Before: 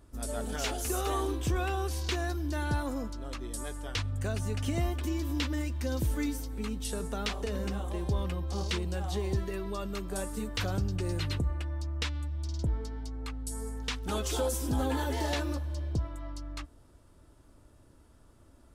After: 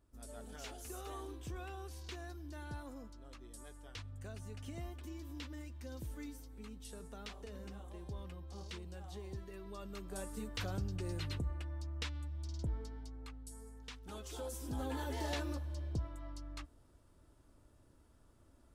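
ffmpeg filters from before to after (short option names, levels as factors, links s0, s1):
-af "volume=1.06,afade=t=in:st=9.46:d=0.9:silence=0.446684,afade=t=out:st=12.81:d=0.84:silence=0.421697,afade=t=in:st=14.27:d=1.07:silence=0.375837"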